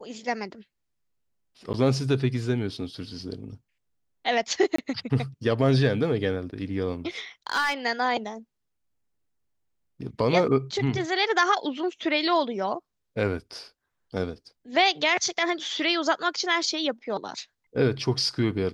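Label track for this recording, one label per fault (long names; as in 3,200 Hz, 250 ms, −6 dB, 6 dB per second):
1.730000	1.740000	drop-out 9.2 ms
4.760000	4.780000	drop-out 24 ms
7.470000	7.740000	clipping −19.5 dBFS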